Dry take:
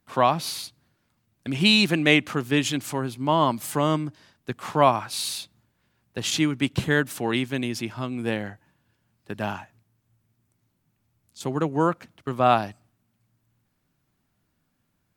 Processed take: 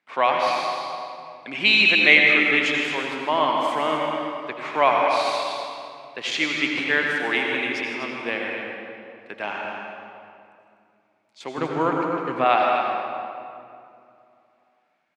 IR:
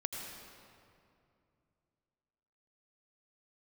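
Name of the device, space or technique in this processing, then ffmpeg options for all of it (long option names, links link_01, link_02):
station announcement: -filter_complex "[0:a]highpass=440,lowpass=4200,equalizer=frequency=2200:width_type=o:width=0.49:gain=10,aecho=1:1:157.4|247.8:0.251|0.316[link_01];[1:a]atrim=start_sample=2205[link_02];[link_01][link_02]afir=irnorm=-1:irlink=0,asettb=1/sr,asplit=3[link_03][link_04][link_05];[link_03]atrim=end=11.584[link_06];[link_04]atrim=start=11.58:end=12.45,asetpts=PTS-STARTPTS,afade=type=in:duration=0.004:curve=qsin,afade=type=out:start_time=0.866:duration=0.004:curve=qsin,bass=frequency=250:gain=12,treble=frequency=4000:gain=1[link_07];[link_05]atrim=start=12.446[link_08];[link_06][link_07]acrossfade=duration=0.004:curve1=hsin:curve2=qsin[link_09];[link_09][link_08]acrossfade=duration=0.004:curve1=qsin:curve2=hsin,volume=1dB"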